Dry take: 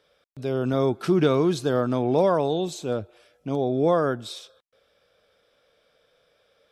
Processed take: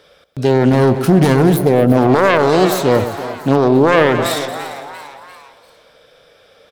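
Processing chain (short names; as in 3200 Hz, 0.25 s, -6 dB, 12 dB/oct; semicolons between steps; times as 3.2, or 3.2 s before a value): self-modulated delay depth 0.55 ms; spectral gain 0.69–1.67, 260–8500 Hz -7 dB; frequency-shifting echo 0.344 s, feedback 50%, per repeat +140 Hz, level -16 dB; spectral gain 1.56–1.98, 780–9200 Hz -10 dB; echo with dull and thin repeats by turns 0.113 s, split 890 Hz, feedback 66%, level -11 dB; maximiser +16.5 dB; gain -1 dB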